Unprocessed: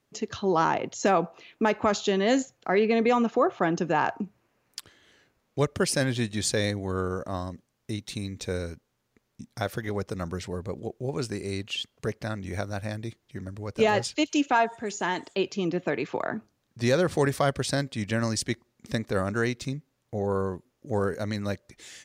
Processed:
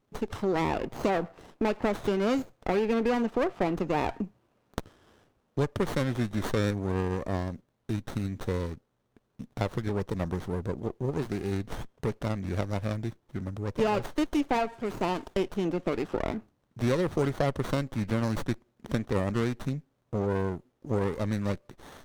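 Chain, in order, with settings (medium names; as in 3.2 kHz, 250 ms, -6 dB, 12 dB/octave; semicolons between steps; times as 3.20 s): compression 2:1, threshold -29 dBFS, peak gain reduction 7 dB; sliding maximum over 17 samples; trim +2 dB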